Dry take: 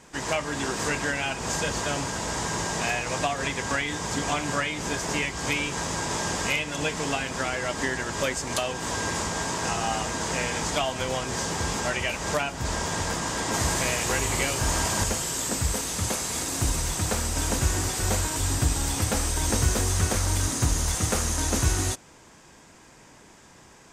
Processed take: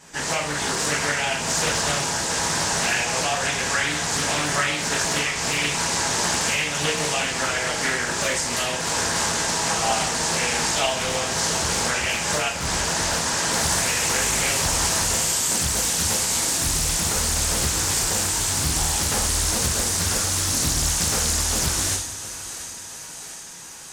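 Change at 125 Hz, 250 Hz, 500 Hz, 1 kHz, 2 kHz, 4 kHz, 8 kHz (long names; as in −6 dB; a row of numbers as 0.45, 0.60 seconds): −1.0, 0.0, +2.0, +3.5, +5.0, +8.0, +7.5 decibels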